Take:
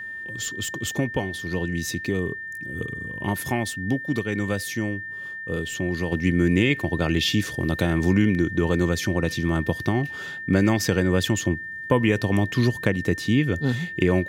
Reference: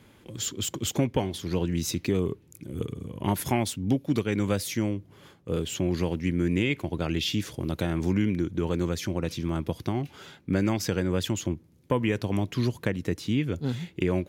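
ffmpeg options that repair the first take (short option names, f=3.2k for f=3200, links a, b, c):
-af "bandreject=f=1.8k:w=30,asetnsamples=n=441:p=0,asendcmd='6.12 volume volume -5.5dB',volume=0dB"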